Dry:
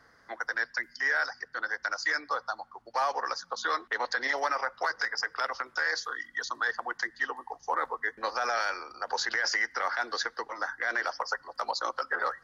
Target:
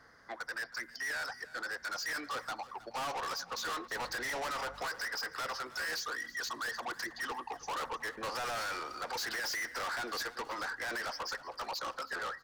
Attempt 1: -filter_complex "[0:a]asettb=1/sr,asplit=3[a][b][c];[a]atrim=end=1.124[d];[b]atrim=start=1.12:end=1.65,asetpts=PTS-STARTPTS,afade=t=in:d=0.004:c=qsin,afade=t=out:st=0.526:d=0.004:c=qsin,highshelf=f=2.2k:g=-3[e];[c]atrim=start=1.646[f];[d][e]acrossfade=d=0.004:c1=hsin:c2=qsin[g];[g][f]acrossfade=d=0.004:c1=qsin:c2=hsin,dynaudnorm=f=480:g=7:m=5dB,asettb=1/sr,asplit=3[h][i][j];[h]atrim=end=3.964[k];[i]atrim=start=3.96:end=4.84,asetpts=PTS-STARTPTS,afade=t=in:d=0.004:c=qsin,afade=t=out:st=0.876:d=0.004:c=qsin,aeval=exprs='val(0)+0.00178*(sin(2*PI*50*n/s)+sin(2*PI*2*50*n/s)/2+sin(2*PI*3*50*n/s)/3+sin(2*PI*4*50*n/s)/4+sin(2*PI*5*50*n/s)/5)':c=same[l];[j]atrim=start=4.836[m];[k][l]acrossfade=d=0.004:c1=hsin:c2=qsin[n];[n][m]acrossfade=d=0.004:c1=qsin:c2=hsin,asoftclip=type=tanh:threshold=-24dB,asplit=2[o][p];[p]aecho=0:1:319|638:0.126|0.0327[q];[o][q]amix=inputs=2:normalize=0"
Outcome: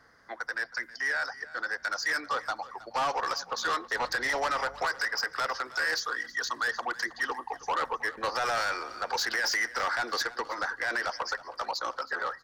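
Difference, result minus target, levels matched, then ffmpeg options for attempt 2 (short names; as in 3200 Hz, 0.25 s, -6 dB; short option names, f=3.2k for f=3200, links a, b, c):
soft clip: distortion -7 dB
-filter_complex "[0:a]asettb=1/sr,asplit=3[a][b][c];[a]atrim=end=1.124[d];[b]atrim=start=1.12:end=1.65,asetpts=PTS-STARTPTS,afade=t=in:d=0.004:c=qsin,afade=t=out:st=0.526:d=0.004:c=qsin,highshelf=f=2.2k:g=-3[e];[c]atrim=start=1.646[f];[d][e]acrossfade=d=0.004:c1=hsin:c2=qsin[g];[g][f]acrossfade=d=0.004:c1=qsin:c2=hsin,dynaudnorm=f=480:g=7:m=5dB,asettb=1/sr,asplit=3[h][i][j];[h]atrim=end=3.964[k];[i]atrim=start=3.96:end=4.84,asetpts=PTS-STARTPTS,afade=t=in:d=0.004:c=qsin,afade=t=out:st=0.876:d=0.004:c=qsin,aeval=exprs='val(0)+0.00178*(sin(2*PI*50*n/s)+sin(2*PI*2*50*n/s)/2+sin(2*PI*3*50*n/s)/3+sin(2*PI*4*50*n/s)/4+sin(2*PI*5*50*n/s)/5)':c=same[l];[j]atrim=start=4.836[m];[k][l]acrossfade=d=0.004:c1=hsin:c2=qsin[n];[n][m]acrossfade=d=0.004:c1=qsin:c2=hsin,asoftclip=type=tanh:threshold=-35dB,asplit=2[o][p];[p]aecho=0:1:319|638:0.126|0.0327[q];[o][q]amix=inputs=2:normalize=0"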